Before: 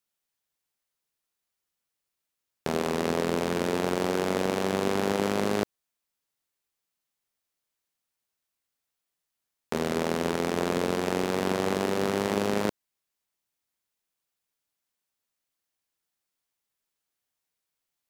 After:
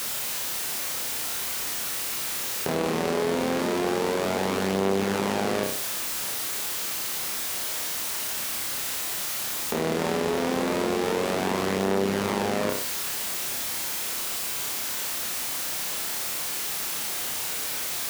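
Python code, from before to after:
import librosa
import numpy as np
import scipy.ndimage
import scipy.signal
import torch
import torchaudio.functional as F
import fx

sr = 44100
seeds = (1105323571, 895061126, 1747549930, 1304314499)

p1 = x + 0.5 * 10.0 ** (-28.5 / 20.0) * np.sign(x)
p2 = scipy.signal.sosfilt(scipy.signal.butter(2, 41.0, 'highpass', fs=sr, output='sos'), p1)
p3 = fx.low_shelf(p2, sr, hz=150.0, db=-5.0)
p4 = p3 + fx.room_flutter(p3, sr, wall_m=5.3, rt60_s=0.4, dry=0)
p5 = fx.env_flatten(p4, sr, amount_pct=50)
y = p5 * librosa.db_to_amplitude(-4.0)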